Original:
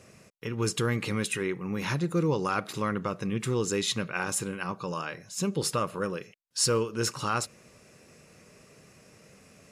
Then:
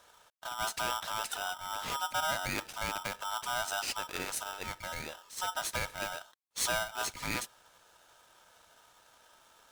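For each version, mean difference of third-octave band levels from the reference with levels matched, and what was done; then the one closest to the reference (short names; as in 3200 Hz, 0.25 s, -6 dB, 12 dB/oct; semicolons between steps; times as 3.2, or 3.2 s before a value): 12.5 dB: polarity switched at an audio rate 1100 Hz; gain -6.5 dB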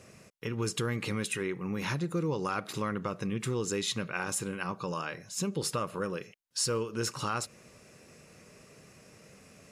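2.0 dB: compressor 2:1, threshold -31 dBFS, peak gain reduction 6 dB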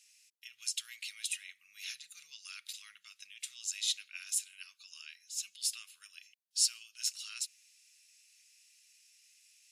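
19.5 dB: inverse Chebyshev high-pass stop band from 820 Hz, stop band 60 dB; gain -2 dB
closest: second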